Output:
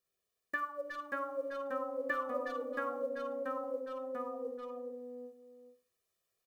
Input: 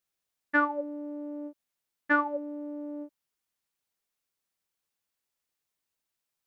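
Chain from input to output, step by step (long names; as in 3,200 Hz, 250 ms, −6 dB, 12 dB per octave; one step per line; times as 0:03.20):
one scale factor per block 7 bits
far-end echo of a speakerphone 360 ms, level −12 dB
convolution reverb RT60 0.40 s, pre-delay 50 ms, DRR 8.5 dB
downward compressor 2.5 to 1, threshold −35 dBFS, peak gain reduction 10.5 dB
delay with pitch and tempo change per echo 552 ms, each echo −1 semitone, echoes 3
parametric band 340 Hz +14.5 dB 1 octave
notch filter 590 Hz, Q 12
comb filter 1.7 ms, depth 94%
level −5 dB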